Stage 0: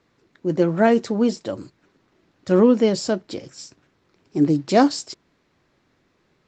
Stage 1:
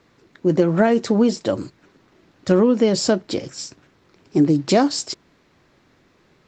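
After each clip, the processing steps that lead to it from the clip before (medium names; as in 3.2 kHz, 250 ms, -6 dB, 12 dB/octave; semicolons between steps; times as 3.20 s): compression 6:1, threshold -19 dBFS, peak gain reduction 9.5 dB; trim +7 dB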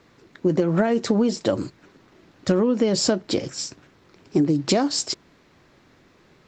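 compression 6:1, threshold -18 dBFS, peak gain reduction 8 dB; trim +2 dB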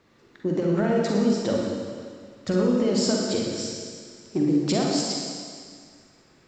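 reverberation RT60 2.0 s, pre-delay 41 ms, DRR -2 dB; trim -6.5 dB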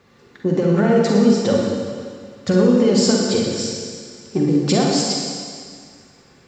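comb of notches 320 Hz; trim +8 dB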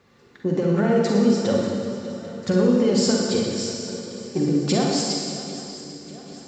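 shuffle delay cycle 792 ms, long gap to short 3:1, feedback 50%, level -15 dB; trim -4 dB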